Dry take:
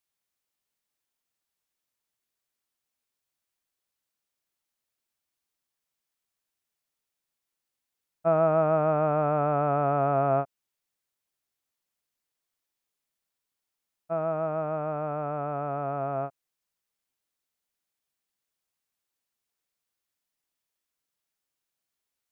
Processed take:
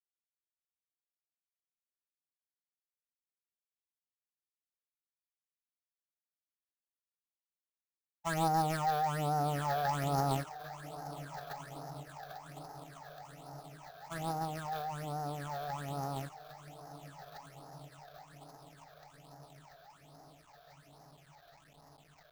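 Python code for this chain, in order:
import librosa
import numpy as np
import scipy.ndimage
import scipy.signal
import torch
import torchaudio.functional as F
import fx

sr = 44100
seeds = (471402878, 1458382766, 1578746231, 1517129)

y = fx.wiener(x, sr, points=25)
y = fx.high_shelf(y, sr, hz=2300.0, db=-6.0)
y = fx.hum_notches(y, sr, base_hz=60, count=9)
y = fx.echo_diffused(y, sr, ms=1416, feedback_pct=64, wet_db=-13.5)
y = fx.quant_companded(y, sr, bits=4)
y = fx.phaser_stages(y, sr, stages=8, low_hz=250.0, high_hz=2300.0, hz=1.2, feedback_pct=35)
y = fx.formant_shift(y, sr, semitones=4)
y = F.gain(torch.from_numpy(y), -5.0).numpy()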